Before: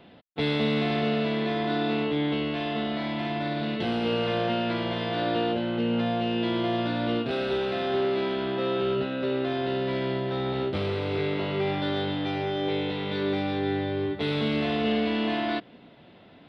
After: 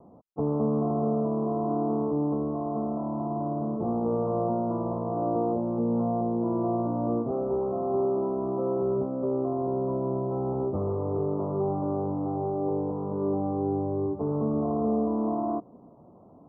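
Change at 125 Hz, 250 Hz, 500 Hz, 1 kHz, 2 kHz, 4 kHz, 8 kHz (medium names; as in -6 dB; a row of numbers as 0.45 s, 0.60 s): 0.0 dB, 0.0 dB, 0.0 dB, -0.5 dB, under -35 dB, under -40 dB, no reading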